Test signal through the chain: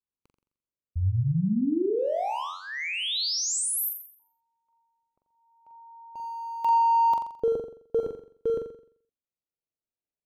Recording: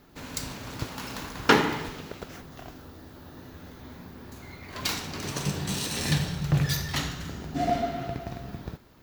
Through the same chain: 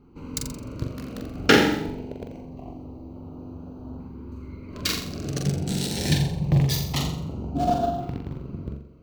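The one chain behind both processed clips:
adaptive Wiener filter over 25 samples
auto-filter notch saw up 0.25 Hz 630–2,200 Hz
flutter between parallel walls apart 7.4 metres, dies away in 0.55 s
level +4 dB

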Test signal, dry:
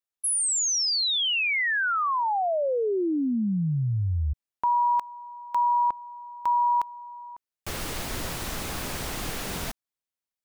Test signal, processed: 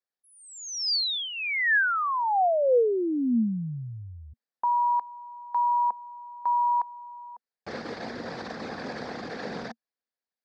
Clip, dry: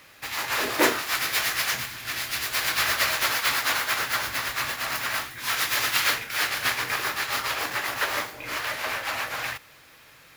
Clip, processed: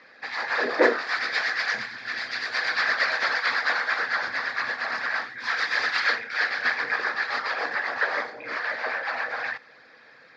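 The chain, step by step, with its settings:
spectral envelope exaggerated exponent 1.5
loudspeaker in its box 190–5,000 Hz, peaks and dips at 230 Hz +8 dB, 490 Hz +9 dB, 740 Hz +6 dB, 1,700 Hz +8 dB, 2,900 Hz −9 dB, 4,700 Hz +6 dB
level −3 dB

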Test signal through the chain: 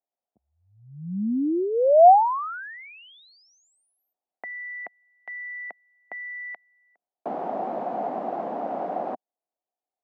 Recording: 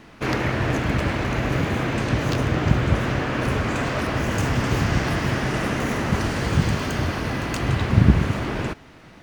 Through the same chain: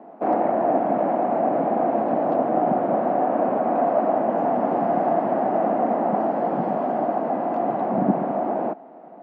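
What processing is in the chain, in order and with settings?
Butterworth high-pass 200 Hz 36 dB per octave
dynamic equaliser 420 Hz, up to −6 dB, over −46 dBFS, Q 6.1
low-pass with resonance 720 Hz, resonance Q 5.8

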